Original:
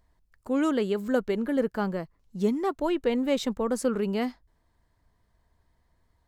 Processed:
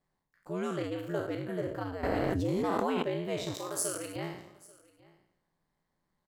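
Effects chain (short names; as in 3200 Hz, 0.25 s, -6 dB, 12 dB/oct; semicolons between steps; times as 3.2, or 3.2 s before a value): spectral trails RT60 0.77 s; HPF 88 Hz 12 dB/oct; ring modulator 90 Hz; 3.54–4.16 RIAA curve recording; on a send: echo 0.839 s -23.5 dB; 2.03–3.03 on the sum: fast leveller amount 100%; gain -7 dB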